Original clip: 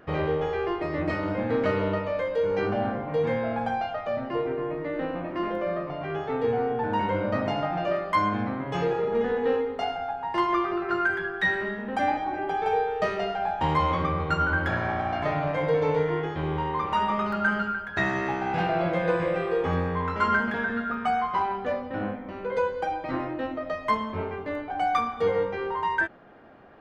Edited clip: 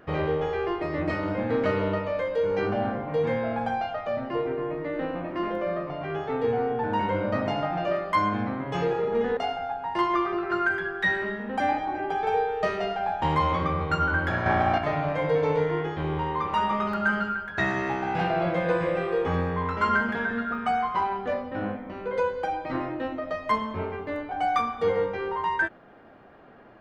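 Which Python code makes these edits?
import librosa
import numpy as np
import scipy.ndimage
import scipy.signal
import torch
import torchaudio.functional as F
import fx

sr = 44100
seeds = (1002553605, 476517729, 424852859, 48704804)

y = fx.edit(x, sr, fx.cut(start_s=9.37, length_s=0.39),
    fx.clip_gain(start_s=14.85, length_s=0.32, db=5.5), tone=tone)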